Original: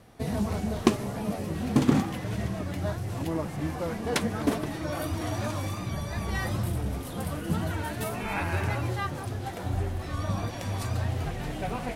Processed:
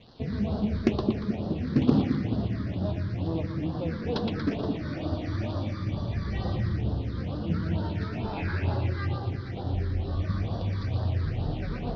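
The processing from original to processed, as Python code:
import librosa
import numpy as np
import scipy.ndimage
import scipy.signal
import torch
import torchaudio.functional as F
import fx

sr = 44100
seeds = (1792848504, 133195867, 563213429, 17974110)

p1 = fx.sample_hold(x, sr, seeds[0], rate_hz=3100.0, jitter_pct=0)
p2 = x + (p1 * librosa.db_to_amplitude(-7.5))
p3 = fx.dmg_crackle(p2, sr, seeds[1], per_s=540.0, level_db=-35.0)
p4 = scipy.signal.sosfilt(scipy.signal.butter(8, 5000.0, 'lowpass', fs=sr, output='sos'), p3)
p5 = p4 + fx.echo_split(p4, sr, split_hz=390.0, low_ms=216, high_ms=117, feedback_pct=52, wet_db=-4, dry=0)
p6 = fx.phaser_stages(p5, sr, stages=6, low_hz=710.0, high_hz=2300.0, hz=2.2, feedback_pct=15)
p7 = fx.doppler_dist(p6, sr, depth_ms=0.2)
y = p7 * librosa.db_to_amplitude(-3.5)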